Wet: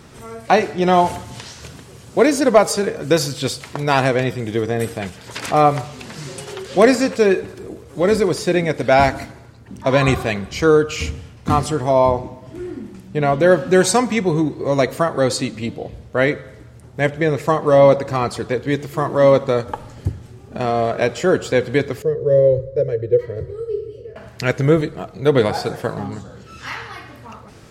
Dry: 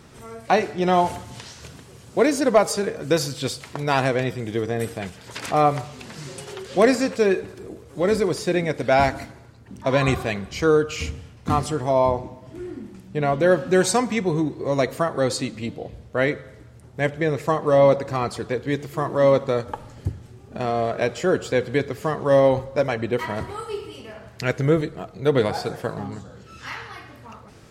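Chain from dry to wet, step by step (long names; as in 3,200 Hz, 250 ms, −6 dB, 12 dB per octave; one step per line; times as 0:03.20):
0:22.02–0:24.16: drawn EQ curve 140 Hz 0 dB, 240 Hz −21 dB, 480 Hz +8 dB, 800 Hz −30 dB, 1,800 Hz −16 dB, 2,700 Hz −23 dB, 4,500 Hz −17 dB, 8,800 Hz −22 dB
level +4.5 dB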